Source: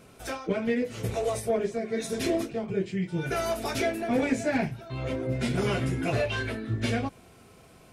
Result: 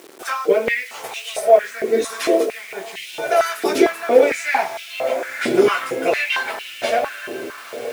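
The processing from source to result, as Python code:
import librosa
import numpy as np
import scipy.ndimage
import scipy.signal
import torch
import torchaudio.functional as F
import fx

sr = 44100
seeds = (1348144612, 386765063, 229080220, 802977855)

y = fx.echo_diffused(x, sr, ms=960, feedback_pct=44, wet_db=-11.0)
y = fx.quant_dither(y, sr, seeds[0], bits=8, dither='none')
y = fx.filter_held_highpass(y, sr, hz=4.4, low_hz=350.0, high_hz=2800.0)
y = F.gain(torch.from_numpy(y), 7.0).numpy()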